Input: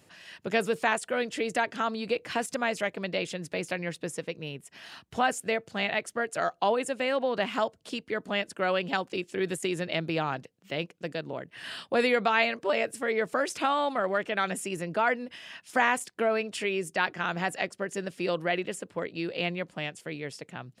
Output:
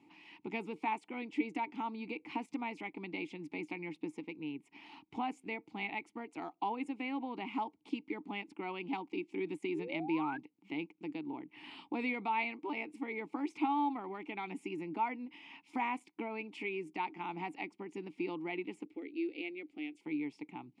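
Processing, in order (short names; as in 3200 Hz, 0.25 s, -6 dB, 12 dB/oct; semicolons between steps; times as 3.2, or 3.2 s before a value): in parallel at +2 dB: compressor, threshold -39 dBFS, peak gain reduction 18.5 dB; on the sum: vowel filter u; 9.74–10.38 painted sound rise 360–1700 Hz -47 dBFS; 18.85–20.01 fixed phaser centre 400 Hz, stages 4; gain +2.5 dB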